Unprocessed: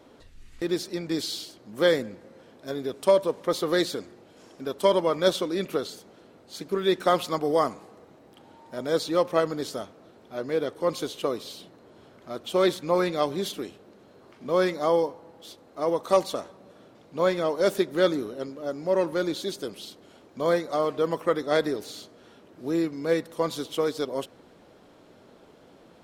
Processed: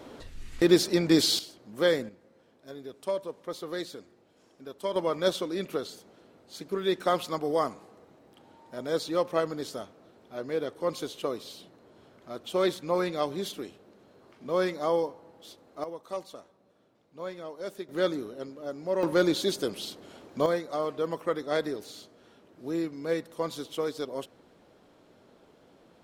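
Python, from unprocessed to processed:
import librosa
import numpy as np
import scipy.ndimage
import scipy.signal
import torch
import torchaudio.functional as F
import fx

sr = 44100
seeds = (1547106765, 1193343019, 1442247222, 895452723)

y = fx.gain(x, sr, db=fx.steps((0.0, 7.0), (1.39, -3.0), (2.09, -11.0), (4.96, -4.0), (15.84, -14.5), (17.89, -5.0), (19.03, 3.5), (20.46, -5.0)))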